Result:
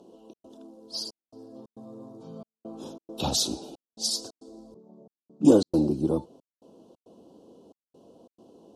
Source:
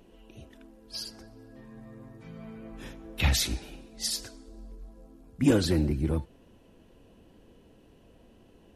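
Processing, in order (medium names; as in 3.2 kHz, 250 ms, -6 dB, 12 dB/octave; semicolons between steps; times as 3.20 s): 4.74–5.45 s: vocoder on a held chord major triad, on D3; high-pass 250 Hz 12 dB/octave; trance gate "xxx.xxxxxx.." 136 bpm -60 dB; Butterworth band-stop 2 kHz, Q 0.63; distance through air 54 m; trim +7.5 dB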